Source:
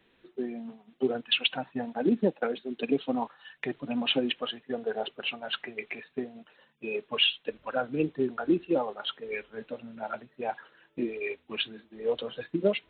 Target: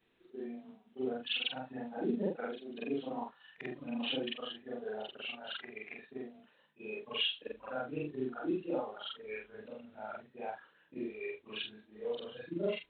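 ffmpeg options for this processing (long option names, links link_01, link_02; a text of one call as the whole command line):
ffmpeg -i in.wav -af "afftfilt=real='re':imag='-im':win_size=4096:overlap=0.75,volume=-4dB" -ar 48000 -c:a aac -b:a 192k out.aac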